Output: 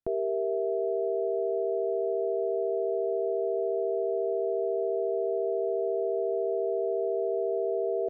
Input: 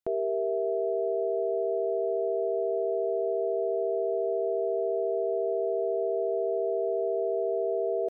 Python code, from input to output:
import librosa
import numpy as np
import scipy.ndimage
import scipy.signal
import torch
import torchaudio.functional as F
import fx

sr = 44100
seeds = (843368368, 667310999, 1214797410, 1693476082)

y = fx.tilt_eq(x, sr, slope=-2.5)
y = y * 10.0 ** (-3.0 / 20.0)